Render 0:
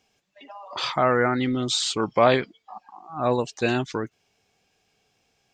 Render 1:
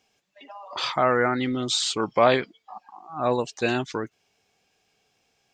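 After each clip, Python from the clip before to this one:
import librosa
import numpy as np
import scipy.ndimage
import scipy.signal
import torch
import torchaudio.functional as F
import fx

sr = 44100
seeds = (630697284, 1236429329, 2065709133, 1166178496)

y = fx.low_shelf(x, sr, hz=200.0, db=-5.0)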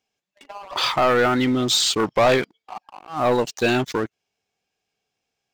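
y = fx.leveller(x, sr, passes=3)
y = y * 10.0 ** (-4.5 / 20.0)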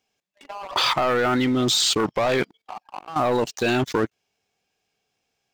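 y = fx.level_steps(x, sr, step_db=14)
y = y * 10.0 ** (7.5 / 20.0)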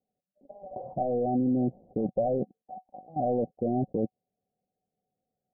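y = scipy.signal.sosfilt(scipy.signal.cheby1(6, 9, 770.0, 'lowpass', fs=sr, output='sos'), x)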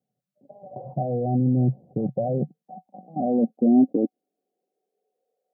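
y = fx.filter_sweep_highpass(x, sr, from_hz=130.0, to_hz=480.0, start_s=2.1, end_s=5.39, q=5.4)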